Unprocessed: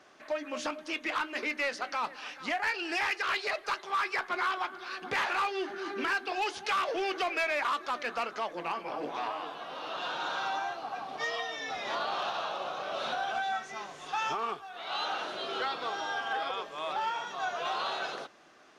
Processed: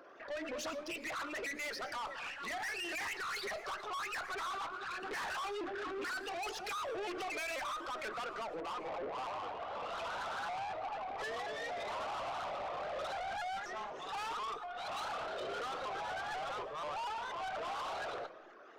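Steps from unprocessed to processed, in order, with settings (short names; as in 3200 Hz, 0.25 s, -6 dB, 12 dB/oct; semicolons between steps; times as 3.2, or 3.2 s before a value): formant sharpening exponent 2; dynamic EQ 3300 Hz, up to -4 dB, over -49 dBFS, Q 2.8; in parallel at -2.5 dB: limiter -30.5 dBFS, peak gain reduction 9 dB; on the sum: tube stage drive 36 dB, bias 0.3; de-hum 53.1 Hz, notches 5; on a send at -13.5 dB: reverb RT60 0.35 s, pre-delay 70 ms; on the sum: shaped vibrato saw up 4.1 Hz, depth 160 cents; gain -2 dB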